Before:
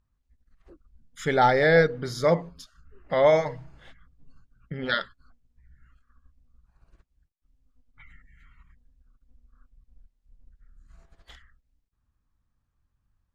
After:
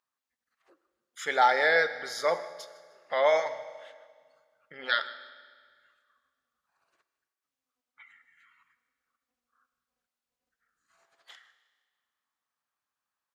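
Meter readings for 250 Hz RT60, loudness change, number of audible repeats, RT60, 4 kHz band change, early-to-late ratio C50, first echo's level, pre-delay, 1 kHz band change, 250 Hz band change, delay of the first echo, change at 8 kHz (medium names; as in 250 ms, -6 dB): 1.8 s, -3.5 dB, 2, 1.8 s, +0.5 dB, 12.5 dB, -20.5 dB, 9 ms, -1.5 dB, -18.0 dB, 155 ms, no reading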